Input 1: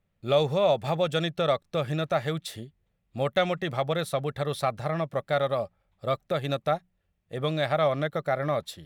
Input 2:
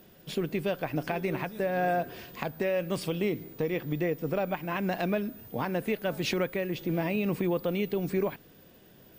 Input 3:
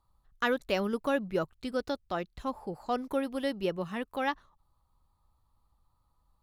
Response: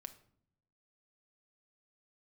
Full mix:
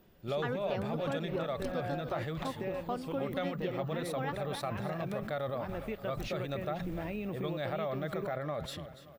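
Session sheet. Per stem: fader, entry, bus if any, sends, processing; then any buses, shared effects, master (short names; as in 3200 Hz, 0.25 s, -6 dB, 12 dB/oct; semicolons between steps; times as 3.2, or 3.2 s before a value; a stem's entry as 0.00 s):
-6.0 dB, 0.00 s, no send, echo send -16 dB, sustainer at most 50 dB/s
-7.0 dB, 0.00 s, no send, no echo send, dry
-0.5 dB, 0.00 s, no send, echo send -11.5 dB, high shelf 5900 Hz -9.5 dB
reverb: off
echo: feedback echo 0.288 s, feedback 41%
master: high shelf 3800 Hz -6.5 dB; compressor 2.5:1, threshold -34 dBFS, peak gain reduction 9 dB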